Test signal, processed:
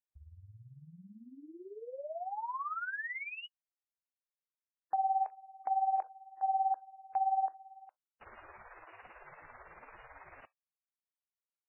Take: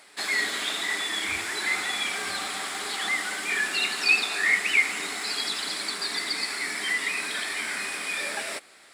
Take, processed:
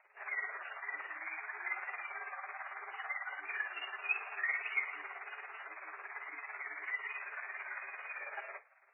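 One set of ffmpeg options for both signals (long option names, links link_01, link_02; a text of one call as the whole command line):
ffmpeg -i in.wav -filter_complex "[0:a]acrossover=split=590 2400:gain=0.141 1 0.0708[link_01][link_02][link_03];[link_01][link_02][link_03]amix=inputs=3:normalize=0,tremolo=f=18:d=0.73,volume=-5.5dB" -ar 11025 -c:a libmp3lame -b:a 8k out.mp3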